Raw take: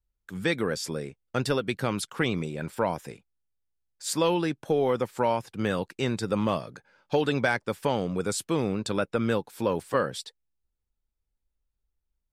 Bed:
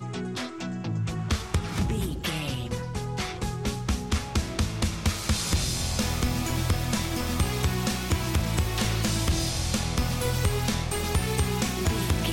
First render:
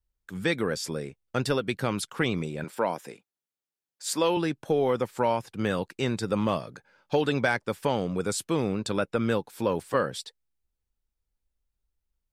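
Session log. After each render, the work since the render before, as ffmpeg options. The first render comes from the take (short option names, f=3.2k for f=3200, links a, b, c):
-filter_complex "[0:a]asettb=1/sr,asplit=3[a][b][c];[a]atrim=end=2.644[d];[b]atrim=start=2.64:end=4.37,asetpts=PTS-STARTPTS,afade=t=in:d=0.004:c=qsin,afade=t=out:st=1.726:d=0.004:c=qsin,highpass=220[e];[c]atrim=start=4.366[f];[d][e]acrossfade=d=0.004:c1=hsin:c2=qsin[g];[g][f]acrossfade=d=0.004:c1=qsin:c2=hsin"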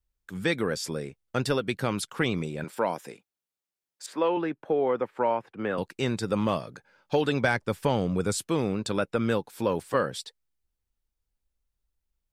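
-filter_complex "[0:a]asettb=1/sr,asplit=3[a][b][c];[a]atrim=end=4.064[d];[b]atrim=start=4.06:end=5.78,asetpts=PTS-STARTPTS,afade=t=in:d=0.004:c=qsin,afade=t=out:st=1.716:d=0.004:c=qsin,acrossover=split=230 2600:gain=0.251 1 0.0708[e][f][g];[e][f][g]amix=inputs=3:normalize=0[h];[c]atrim=start=5.776[i];[d][h]acrossfade=d=0.004:c1=hsin:c2=qsin[j];[j][i]acrossfade=d=0.004:c1=qsin:c2=hsin,asettb=1/sr,asplit=3[k][l][m];[k]atrim=end=7.444[n];[l]atrim=start=7.44:end=8.39,asetpts=PTS-STARTPTS,afade=t=in:d=0.004:c=qsin,afade=t=out:st=0.946:d=0.004:c=qsin,lowshelf=f=130:g=9.5[o];[m]atrim=start=8.386[p];[n][o]acrossfade=d=0.004:c1=hsin:c2=qsin[q];[q][p]acrossfade=d=0.004:c1=qsin:c2=hsin"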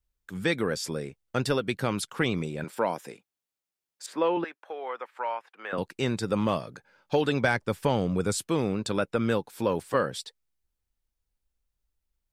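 -filter_complex "[0:a]asettb=1/sr,asplit=3[a][b][c];[a]atrim=end=4.444[d];[b]atrim=start=4.44:end=5.73,asetpts=PTS-STARTPTS,afade=t=in:d=0.004:c=qsin,afade=t=out:st=1.286:d=0.004:c=qsin,highpass=950[e];[c]atrim=start=5.726[f];[d][e]acrossfade=d=0.004:c1=hsin:c2=qsin[g];[g][f]acrossfade=d=0.004:c1=qsin:c2=hsin"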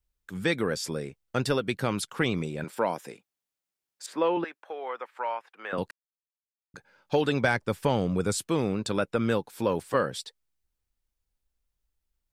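-filter_complex "[0:a]asplit=3[a][b][c];[a]atrim=end=5.91,asetpts=PTS-STARTPTS,afade=t=out:st=5.906:d=0.004:c=hsin[d];[b]atrim=start=5.91:end=6.74,asetpts=PTS-STARTPTS,volume=0[e];[c]atrim=start=6.74,asetpts=PTS-STARTPTS,afade=t=in:d=0.004:c=hsin[f];[d][e][f]concat=n=3:v=0:a=1"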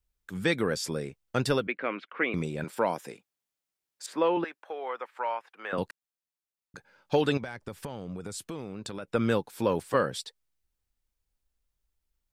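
-filter_complex "[0:a]asettb=1/sr,asplit=3[a][b][c];[a]atrim=end=1.674[d];[b]atrim=start=1.67:end=2.34,asetpts=PTS-STARTPTS,afade=t=in:d=0.004:c=qsin,afade=t=out:st=0.666:d=0.004:c=qsin,highpass=f=290:w=0.5412,highpass=f=290:w=1.3066,equalizer=f=390:t=q:w=4:g=-5,equalizer=f=850:t=q:w=4:g=-8,equalizer=f=2.2k:t=q:w=4:g=6,lowpass=f=2.5k:w=0.5412,lowpass=f=2.5k:w=1.3066[e];[c]atrim=start=2.336[f];[d][e]acrossfade=d=0.004:c1=hsin:c2=qsin[g];[g][f]acrossfade=d=0.004:c1=qsin:c2=hsin,asettb=1/sr,asplit=3[h][i][j];[h]atrim=end=7.374[k];[i]atrim=start=7.37:end=9.08,asetpts=PTS-STARTPTS,afade=t=in:d=0.004:c=qsin,afade=t=out:st=1.706:d=0.004:c=qsin,acompressor=threshold=-33dB:ratio=16:attack=3.2:release=140:knee=1:detection=peak[l];[j]atrim=start=9.076[m];[k][l]acrossfade=d=0.004:c1=hsin:c2=qsin[n];[n][m]acrossfade=d=0.004:c1=qsin:c2=hsin"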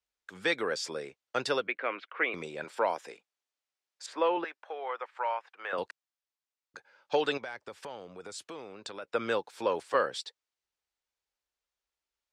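-filter_complex "[0:a]highpass=45,acrossover=split=380 7800:gain=0.112 1 0.1[a][b][c];[a][b][c]amix=inputs=3:normalize=0"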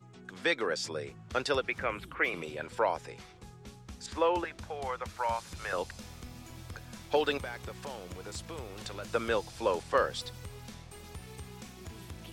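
-filter_complex "[1:a]volume=-20dB[a];[0:a][a]amix=inputs=2:normalize=0"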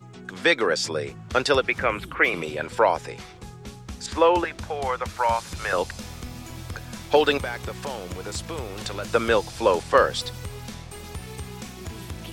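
-af "volume=9.5dB"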